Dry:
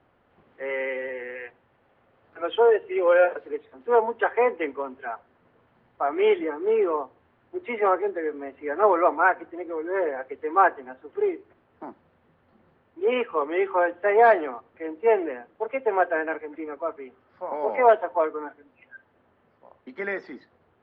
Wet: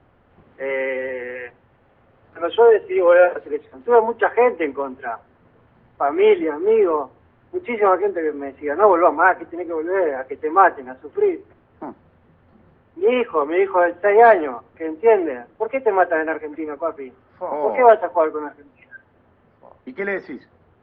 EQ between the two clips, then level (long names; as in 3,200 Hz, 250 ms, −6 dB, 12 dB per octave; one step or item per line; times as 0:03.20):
high-frequency loss of the air 94 metres
low-shelf EQ 150 Hz +9.5 dB
+5.5 dB